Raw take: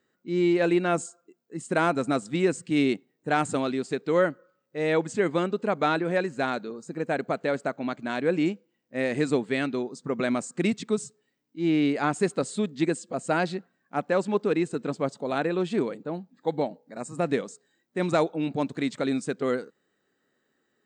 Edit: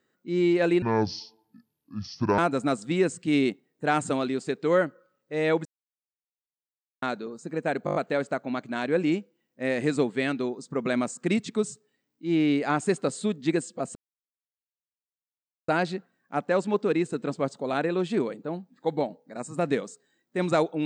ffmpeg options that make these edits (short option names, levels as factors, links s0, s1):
-filter_complex "[0:a]asplit=11[s0][s1][s2][s3][s4][s5][s6][s7][s8][s9][s10];[s0]atrim=end=0.824[s11];[s1]atrim=start=0.82:end=1.82,asetpts=PTS-STARTPTS,asetrate=28224,aresample=44100,atrim=end_sample=68906,asetpts=PTS-STARTPTS[s12];[s2]atrim=start=1.816:end=5.09,asetpts=PTS-STARTPTS,afade=t=out:st=3.27:d=0.004:c=hsin[s13];[s3]atrim=start=5.09:end=6.46,asetpts=PTS-STARTPTS,volume=0[s14];[s4]atrim=start=6.46:end=7.312,asetpts=PTS-STARTPTS,afade=t=in:d=0.004:c=hsin[s15];[s5]atrim=start=7.288:end=7.312[s16];[s6]atrim=start=7.288:end=7.312[s17];[s7]atrim=start=7.288:end=7.312[s18];[s8]atrim=start=7.288:end=7.312[s19];[s9]atrim=start=7.288:end=13.29,asetpts=PTS-STARTPTS,afade=t=out:st=5.998:d=0.004:c=hsin,apad=pad_dur=1.73[s20];[s10]atrim=start=13.29,asetpts=PTS-STARTPTS,afade=t=in:d=0.004:c=hsin[s21];[s11][s12]acrossfade=d=0.004:c1=hsin:c2=hsin[s22];[s13][s14][s15]concat=n=3:v=0:a=1[s23];[s22][s23]acrossfade=d=0.004:c1=hsin:c2=hsin[s24];[s24][s16]acrossfade=d=0.004:c1=hsin:c2=hsin[s25];[s25][s17]acrossfade=d=0.004:c1=hsin:c2=hsin[s26];[s26][s18]acrossfade=d=0.004:c1=hsin:c2=hsin[s27];[s27][s19]acrossfade=d=0.004:c1=hsin:c2=hsin[s28];[s20][s21]concat=n=2:v=0:a=1[s29];[s28][s29]acrossfade=d=0.004:c1=hsin:c2=hsin"